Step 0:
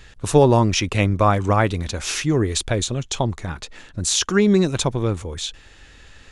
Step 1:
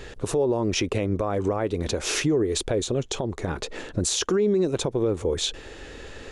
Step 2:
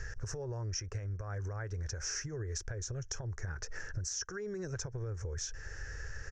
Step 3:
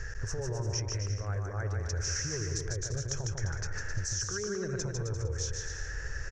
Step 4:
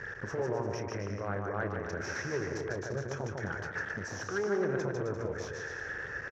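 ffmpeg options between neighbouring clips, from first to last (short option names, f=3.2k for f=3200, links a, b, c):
-af "equalizer=f=430:w=0.94:g=14,acompressor=threshold=-25dB:ratio=2,alimiter=limit=-18dB:level=0:latency=1:release=179,volume=3dB"
-af "firequalizer=gain_entry='entry(110,0);entry(230,-26);entry(440,-16);entry(650,-17);entry(1100,-14);entry(1600,1);entry(2300,-16);entry(3700,-27);entry(5600,4);entry(9400,-26)':delay=0.05:min_phase=1,acompressor=threshold=-39dB:ratio=6,volume=3dB"
-af "aecho=1:1:150|262.5|346.9|410.2|457.6:0.631|0.398|0.251|0.158|0.1,volume=3dB"
-filter_complex "[0:a]aeval=exprs='clip(val(0),-1,0.0188)':c=same,highpass=220,lowpass=2.1k,asplit=2[a][b];[b]adelay=30,volume=-13.5dB[c];[a][c]amix=inputs=2:normalize=0,volume=7dB"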